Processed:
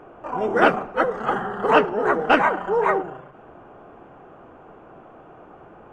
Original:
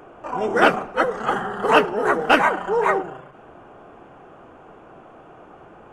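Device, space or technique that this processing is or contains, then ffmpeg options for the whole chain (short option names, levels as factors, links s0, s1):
through cloth: -filter_complex "[0:a]asettb=1/sr,asplit=3[s0][s1][s2];[s0]atrim=end=1.714[s3];[s1]atrim=start=1.71:end=2.59,asetpts=PTS-STARTPTS,afade=t=in:d=0.004:c=qsin,afade=t=out:st=0.876:d=0.004:c=qsin,lowpass=f=9200:w=0.5412,lowpass=f=9200:w=1.3066[s4];[s2]atrim=start=2.586[s5];[s3][s4]acrossfade=d=0.004:c1=hsin:c2=qsin[s6];[s6][s5]acrossfade=d=0.004:c1=qsin:c2=hsin,highshelf=f=3700:g=-12"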